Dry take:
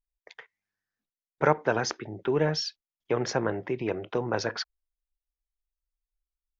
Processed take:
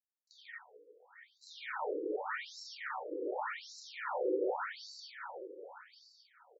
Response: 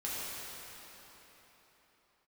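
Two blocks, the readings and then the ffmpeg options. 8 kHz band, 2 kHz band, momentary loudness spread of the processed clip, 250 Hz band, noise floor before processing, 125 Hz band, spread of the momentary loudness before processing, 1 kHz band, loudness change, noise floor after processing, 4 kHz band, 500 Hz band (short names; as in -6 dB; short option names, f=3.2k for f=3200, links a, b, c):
n/a, -7.5 dB, 21 LU, -12.0 dB, under -85 dBFS, under -40 dB, 8 LU, -7.5 dB, -10.5 dB, -76 dBFS, -12.5 dB, -9.5 dB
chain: -filter_complex "[0:a]aeval=exprs='if(lt(val(0),0),0.708*val(0),val(0))':c=same,agate=range=-33dB:threshold=-48dB:ratio=3:detection=peak,acrossover=split=560[a][b];[b]acompressor=threshold=-40dB:ratio=5[c];[a][c]amix=inputs=2:normalize=0,aeval=exprs='0.0251*(abs(mod(val(0)/0.0251+3,4)-2)-1)':c=same,highpass=f=150:p=1,aecho=1:1:2.2:0.36,aecho=1:1:143|286|429|572|715|858|1001|1144:0.596|0.351|0.207|0.122|0.0722|0.0426|0.0251|0.0148[d];[1:a]atrim=start_sample=2205[e];[d][e]afir=irnorm=-1:irlink=0,acrossover=split=2600[f][g];[g]acompressor=threshold=-53dB:ratio=4:attack=1:release=60[h];[f][h]amix=inputs=2:normalize=0,acrusher=bits=4:mode=log:mix=0:aa=0.000001,bandreject=f=2.7k:w=7.9,afftfilt=real='re*between(b*sr/1024,370*pow(5500/370,0.5+0.5*sin(2*PI*0.86*pts/sr))/1.41,370*pow(5500/370,0.5+0.5*sin(2*PI*0.86*pts/sr))*1.41)':imag='im*between(b*sr/1024,370*pow(5500/370,0.5+0.5*sin(2*PI*0.86*pts/sr))/1.41,370*pow(5500/370,0.5+0.5*sin(2*PI*0.86*pts/sr))*1.41)':win_size=1024:overlap=0.75,volume=3dB"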